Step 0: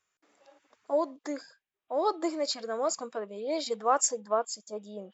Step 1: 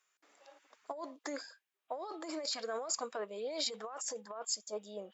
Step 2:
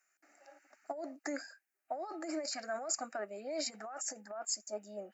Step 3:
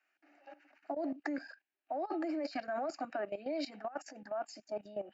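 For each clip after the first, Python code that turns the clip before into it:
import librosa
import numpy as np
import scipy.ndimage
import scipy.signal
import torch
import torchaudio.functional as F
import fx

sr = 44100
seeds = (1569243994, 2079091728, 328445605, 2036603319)

y1 = fx.over_compress(x, sr, threshold_db=-34.0, ratio=-1.0)
y1 = fx.highpass(y1, sr, hz=630.0, slope=6)
y1 = y1 * 10.0 ** (-2.0 / 20.0)
y2 = fx.fixed_phaser(y1, sr, hz=690.0, stages=8)
y2 = y2 * 10.0 ** (3.5 / 20.0)
y3 = fx.cabinet(y2, sr, low_hz=220.0, low_slope=24, high_hz=3800.0, hz=(290.0, 460.0, 1300.0, 2000.0, 2900.0), db=(7, -6, -6, -5, 5))
y3 = fx.level_steps(y3, sr, step_db=15)
y3 = y3 * 10.0 ** (9.5 / 20.0)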